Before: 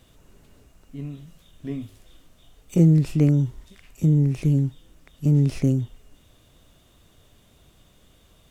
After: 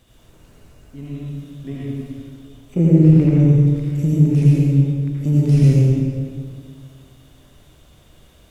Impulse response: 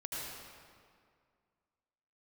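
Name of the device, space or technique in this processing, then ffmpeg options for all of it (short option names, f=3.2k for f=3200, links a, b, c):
stairwell: -filter_complex "[0:a]asettb=1/sr,asplit=3[a][b][c];[a]atrim=end=1.764[d];[b]atrim=start=1.76:end=3.4,asetpts=PTS-STARTPTS,afade=t=in:d=0.004:c=qsin,afade=t=out:st=1.636:d=0.004:c=qsin,acrossover=split=2600[e][f];[f]acompressor=threshold=-57dB:ratio=4:attack=1:release=60[g];[e][g]amix=inputs=2:normalize=0[h];[c]atrim=start=3.396[i];[d][h]acrossfade=d=0.004:c1=hsin:c2=qsin[j];[j][i]acrossfade=d=0.004:c1=qsin:c2=hsin[k];[1:a]atrim=start_sample=2205[l];[k][l]afir=irnorm=-1:irlink=0,volume=4.5dB"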